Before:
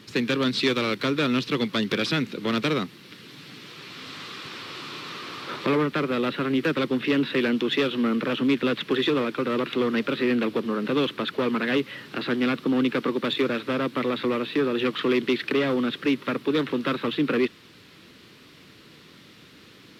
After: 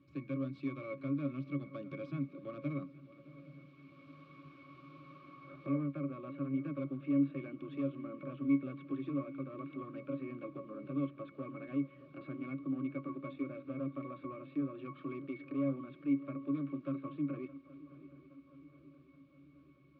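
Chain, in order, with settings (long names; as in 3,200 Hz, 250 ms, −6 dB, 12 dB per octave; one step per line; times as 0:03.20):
resonances in every octave C#, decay 0.14 s
dynamic equaliser 4,000 Hz, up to −4 dB, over −57 dBFS, Q 0.91
feedback echo with a long and a short gap by turns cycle 821 ms, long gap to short 3 to 1, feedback 55%, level −18.5 dB
level −5 dB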